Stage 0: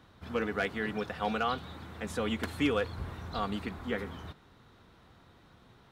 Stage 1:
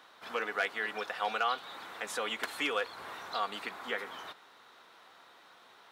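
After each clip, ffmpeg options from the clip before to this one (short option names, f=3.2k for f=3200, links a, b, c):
-filter_complex "[0:a]highpass=670,asplit=2[a][b];[b]acompressor=threshold=-43dB:ratio=6,volume=0.5dB[c];[a][c]amix=inputs=2:normalize=0"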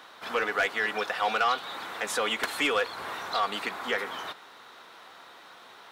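-af "asoftclip=type=tanh:threshold=-25dB,volume=8dB"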